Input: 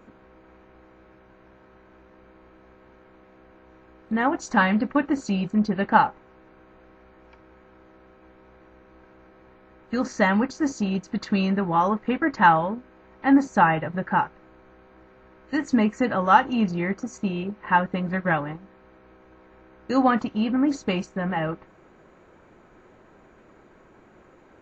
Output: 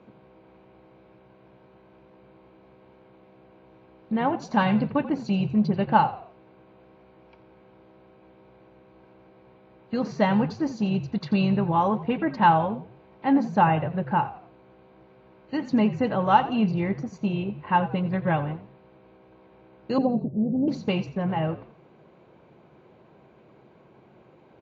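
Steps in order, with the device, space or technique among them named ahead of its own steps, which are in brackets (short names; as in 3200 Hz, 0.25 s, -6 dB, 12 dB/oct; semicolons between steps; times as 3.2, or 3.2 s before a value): 19.98–20.68 steep low-pass 650 Hz 36 dB/oct; frequency-shifting delay pedal into a guitar cabinet (frequency-shifting echo 87 ms, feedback 37%, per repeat -54 Hz, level -15 dB; speaker cabinet 97–4600 Hz, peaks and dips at 140 Hz +8 dB, 280 Hz -4 dB, 1300 Hz -8 dB, 1800 Hz -10 dB)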